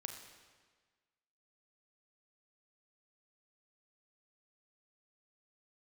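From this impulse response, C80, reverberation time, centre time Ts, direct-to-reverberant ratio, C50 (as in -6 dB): 7.5 dB, 1.5 s, 35 ms, 4.0 dB, 6.0 dB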